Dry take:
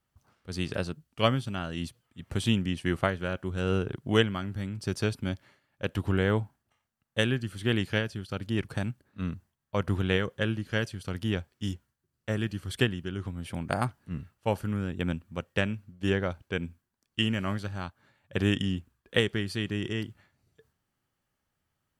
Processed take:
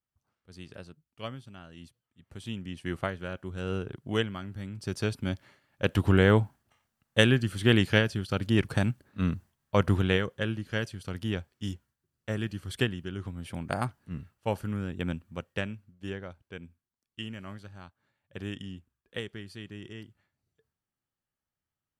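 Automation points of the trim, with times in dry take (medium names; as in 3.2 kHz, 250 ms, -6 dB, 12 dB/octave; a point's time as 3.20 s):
2.36 s -14 dB
2.92 s -5 dB
4.56 s -5 dB
5.90 s +5 dB
9.82 s +5 dB
10.34 s -2 dB
15.32 s -2 dB
16.23 s -11.5 dB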